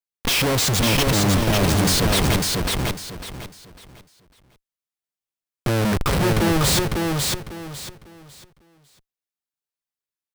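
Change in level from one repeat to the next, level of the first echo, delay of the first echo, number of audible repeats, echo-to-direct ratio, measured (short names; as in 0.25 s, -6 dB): -11.5 dB, -3.0 dB, 0.55 s, 3, -2.5 dB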